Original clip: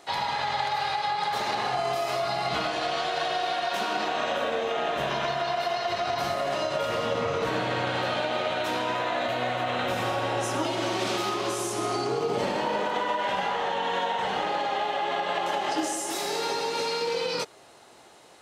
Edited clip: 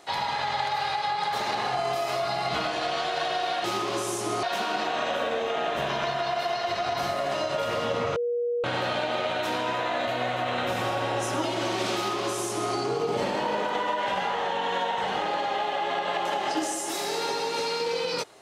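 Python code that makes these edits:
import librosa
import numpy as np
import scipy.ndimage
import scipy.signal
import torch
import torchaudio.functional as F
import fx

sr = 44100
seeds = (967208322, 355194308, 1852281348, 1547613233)

y = fx.edit(x, sr, fx.bleep(start_s=7.37, length_s=0.48, hz=479.0, db=-24.0),
    fx.duplicate(start_s=11.16, length_s=0.79, to_s=3.64), tone=tone)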